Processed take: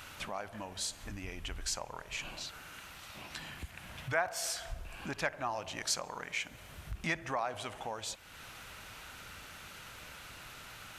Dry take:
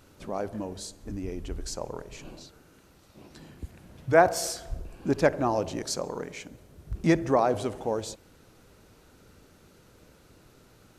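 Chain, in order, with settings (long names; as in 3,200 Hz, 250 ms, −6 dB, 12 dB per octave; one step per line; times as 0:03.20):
flat-topped bell 1,400 Hz +9.5 dB 2.8 octaves
downward compressor 2 to 1, threshold −47 dBFS, peak gain reduction 22 dB
guitar amp tone stack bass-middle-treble 5-5-5
level +16 dB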